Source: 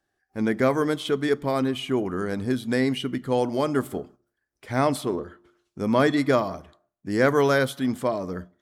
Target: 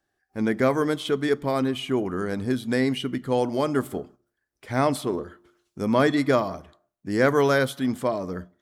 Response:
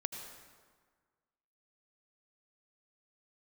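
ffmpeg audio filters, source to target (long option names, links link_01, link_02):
-filter_complex "[0:a]asettb=1/sr,asplit=3[link_01][link_02][link_03];[link_01]atrim=end=5.134[link_04];[link_02]atrim=start=5.13:end=5.85,asetpts=PTS-STARTPTS,afade=type=in:duration=0.004:curve=qsin,afade=type=out:start_time=0.716:duration=0.004:curve=qsin,highshelf=frequency=5600:gain=6[link_05];[link_03]atrim=start=5.846[link_06];[link_04][link_05]acrossfade=duration=0.004:curve1=hsin:curve2=qsin[link_07];[link_07][link_06]acrossfade=duration=0.004:curve1=qsin:curve2=hsin"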